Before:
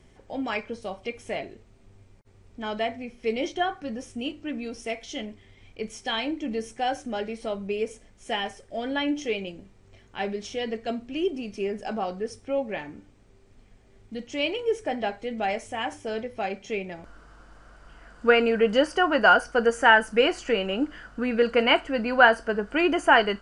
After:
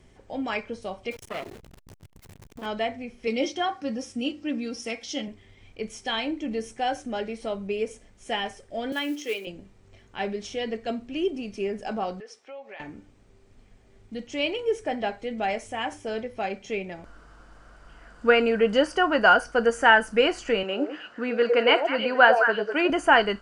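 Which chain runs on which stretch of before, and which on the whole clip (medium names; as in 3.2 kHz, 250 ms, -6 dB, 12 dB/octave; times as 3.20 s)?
1.11–2.66 s: jump at every zero crossing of -38.5 dBFS + transformer saturation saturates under 1.3 kHz
3.27–5.28 s: high-pass 88 Hz + peaking EQ 5.2 kHz +7.5 dB 0.38 oct + comb 3.7 ms, depth 57%
8.92–9.47 s: block-companded coder 5-bit + high-pass 290 Hz 24 dB/octave + peaking EQ 700 Hz -9.5 dB 0.61 oct
12.20–12.80 s: high-pass 700 Hz + peaking EQ 9.4 kHz -12.5 dB 0.67 oct + compression 3:1, threshold -40 dBFS
20.63–22.90 s: band-pass 260–6400 Hz + repeats whose band climbs or falls 104 ms, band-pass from 540 Hz, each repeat 1.4 oct, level -1.5 dB
whole clip: none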